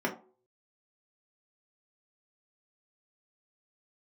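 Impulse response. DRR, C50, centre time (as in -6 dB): -2.5 dB, 11.0 dB, 15 ms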